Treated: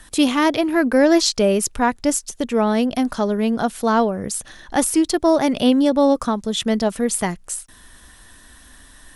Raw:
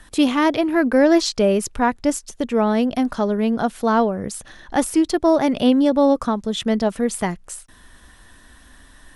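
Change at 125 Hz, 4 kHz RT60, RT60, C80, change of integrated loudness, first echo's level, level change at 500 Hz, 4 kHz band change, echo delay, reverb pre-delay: 0.0 dB, none, none, none, +0.5 dB, none, 0.0 dB, +3.5 dB, none, none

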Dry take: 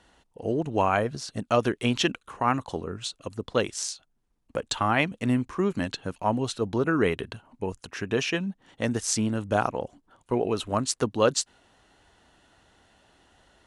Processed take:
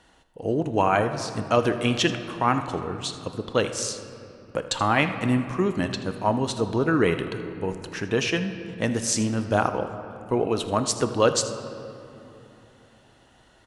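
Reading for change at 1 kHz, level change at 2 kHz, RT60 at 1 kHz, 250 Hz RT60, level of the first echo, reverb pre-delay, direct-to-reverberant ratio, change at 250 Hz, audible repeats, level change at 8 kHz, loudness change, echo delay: +2.5 dB, +2.5 dB, 2.9 s, 3.8 s, -16.5 dB, 6 ms, 7.5 dB, +2.5 dB, 1, +2.5 dB, +2.5 dB, 80 ms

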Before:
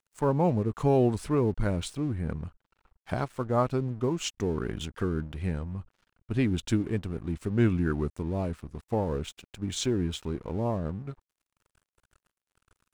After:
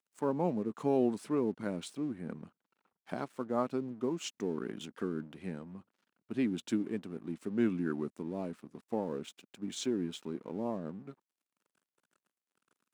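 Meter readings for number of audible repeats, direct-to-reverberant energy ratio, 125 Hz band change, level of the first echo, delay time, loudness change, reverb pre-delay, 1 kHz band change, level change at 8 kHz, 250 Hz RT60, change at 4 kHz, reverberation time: none, none, -15.0 dB, none, none, -6.5 dB, none, -7.0 dB, -7.5 dB, none, -7.5 dB, none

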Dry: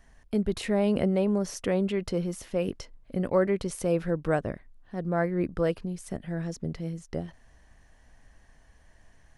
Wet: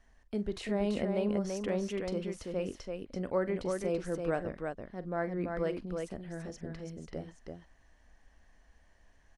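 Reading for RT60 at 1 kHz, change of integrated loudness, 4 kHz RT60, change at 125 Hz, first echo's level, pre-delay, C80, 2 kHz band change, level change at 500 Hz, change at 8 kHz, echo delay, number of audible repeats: none, -6.5 dB, none, -8.0 dB, -15.0 dB, none, none, -5.0 dB, -5.5 dB, -8.0 dB, 44 ms, 2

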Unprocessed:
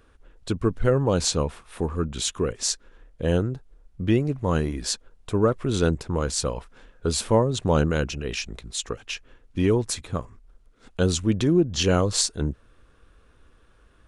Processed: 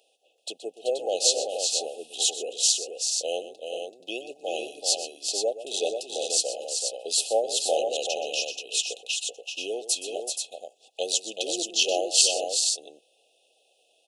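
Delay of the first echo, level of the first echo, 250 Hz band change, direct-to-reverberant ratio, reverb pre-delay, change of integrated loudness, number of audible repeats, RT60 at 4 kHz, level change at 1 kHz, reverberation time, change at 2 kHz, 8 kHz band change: 0.124 s, -13.5 dB, -18.5 dB, none, none, -1.0 dB, 3, none, -3.5 dB, none, -3.0 dB, +5.5 dB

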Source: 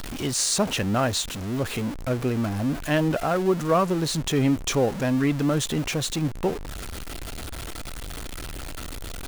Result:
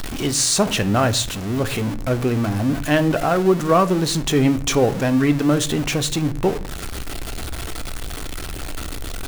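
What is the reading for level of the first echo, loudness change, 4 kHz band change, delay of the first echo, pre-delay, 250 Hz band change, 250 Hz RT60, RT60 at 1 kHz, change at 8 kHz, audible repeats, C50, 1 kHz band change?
none, +5.0 dB, +5.0 dB, none, 3 ms, +5.0 dB, 0.70 s, 0.45 s, +5.0 dB, none, 17.5 dB, +5.5 dB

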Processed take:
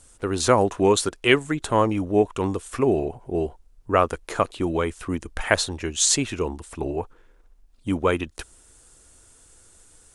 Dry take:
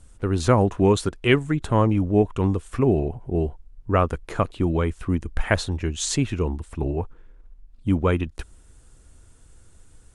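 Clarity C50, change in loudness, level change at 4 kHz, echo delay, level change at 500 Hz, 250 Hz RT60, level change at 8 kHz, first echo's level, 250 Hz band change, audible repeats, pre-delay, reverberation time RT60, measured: none, 0.0 dB, +5.0 dB, none, +1.0 dB, none, +8.0 dB, none, -2.5 dB, none, none, none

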